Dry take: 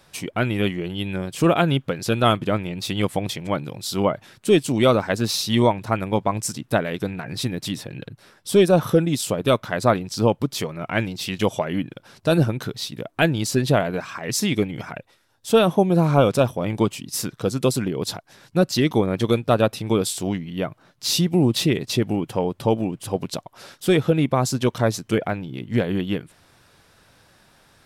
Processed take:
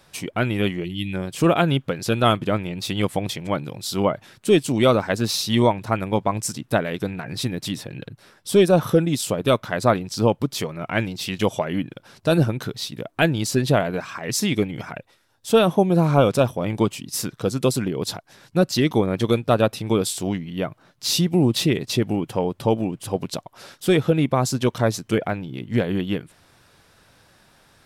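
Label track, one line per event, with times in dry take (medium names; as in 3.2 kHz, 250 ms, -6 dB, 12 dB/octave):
0.840000	1.130000	time-frequency box 370–1800 Hz -17 dB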